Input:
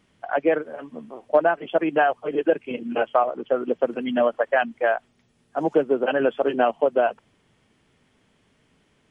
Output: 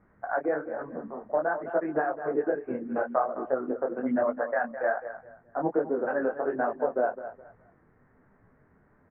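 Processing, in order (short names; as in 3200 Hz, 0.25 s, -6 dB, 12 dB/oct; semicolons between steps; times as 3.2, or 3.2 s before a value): low shelf 420 Hz -5 dB; compressor 2:1, threshold -34 dBFS, peak gain reduction 11 dB; steep low-pass 1800 Hz 48 dB/oct; low shelf 100 Hz +8 dB; on a send: feedback echo 0.209 s, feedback 26%, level -12 dB; on the sum: detuned doubles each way 41 cents; gain +7 dB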